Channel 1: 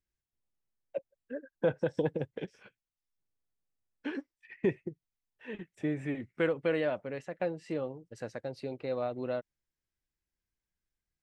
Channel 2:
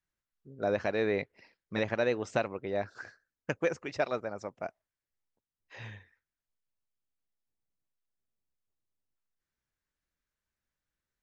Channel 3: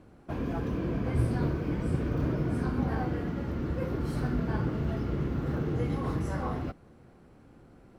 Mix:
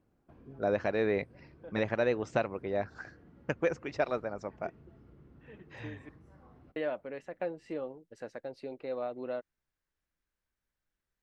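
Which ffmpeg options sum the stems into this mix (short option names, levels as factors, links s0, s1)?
-filter_complex "[0:a]equalizer=f=120:t=o:w=1.2:g=-11,volume=0.841,asplit=3[s0][s1][s2];[s0]atrim=end=6.09,asetpts=PTS-STARTPTS,afade=t=out:st=6.086:d=0.004:c=hsin[s3];[s1]atrim=start=6.09:end=6.76,asetpts=PTS-STARTPTS,volume=0[s4];[s2]atrim=start=6.76,asetpts=PTS-STARTPTS,afade=t=in:d=0.004:c=hsin[s5];[s3][s4][s5]concat=n=3:v=0:a=1[s6];[1:a]volume=1.06,asplit=2[s7][s8];[2:a]acompressor=threshold=0.0141:ratio=4,volume=0.126[s9];[s8]apad=whole_len=494894[s10];[s6][s10]sidechaincompress=threshold=0.00447:ratio=10:attack=5.2:release=1160[s11];[s11][s7][s9]amix=inputs=3:normalize=0,highshelf=f=3500:g=-7.5"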